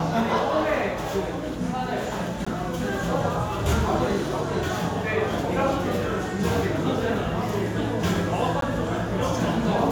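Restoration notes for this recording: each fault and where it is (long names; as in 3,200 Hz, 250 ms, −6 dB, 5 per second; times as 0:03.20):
0:02.45–0:02.46: drop-out 15 ms
0:08.61–0:08.62: drop-out 13 ms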